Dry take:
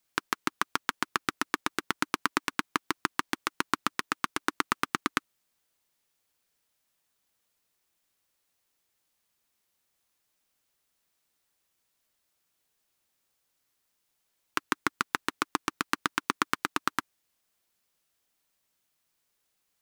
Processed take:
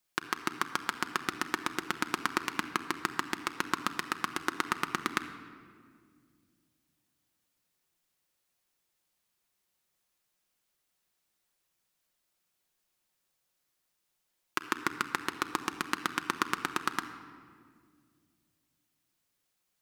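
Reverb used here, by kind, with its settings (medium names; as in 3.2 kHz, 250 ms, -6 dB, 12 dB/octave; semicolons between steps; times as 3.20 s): simulated room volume 3700 m³, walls mixed, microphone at 0.95 m; trim -3 dB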